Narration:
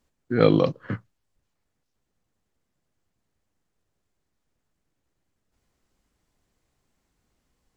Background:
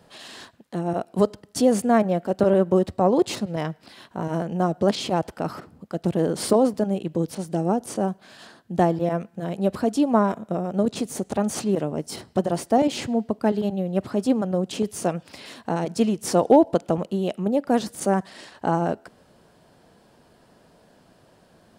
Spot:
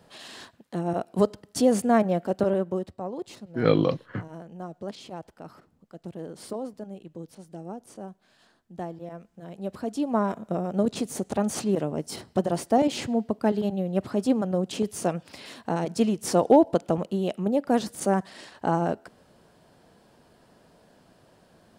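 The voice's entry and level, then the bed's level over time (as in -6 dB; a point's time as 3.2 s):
3.25 s, -3.0 dB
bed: 2.28 s -2 dB
3.1 s -15.5 dB
9.18 s -15.5 dB
10.52 s -2 dB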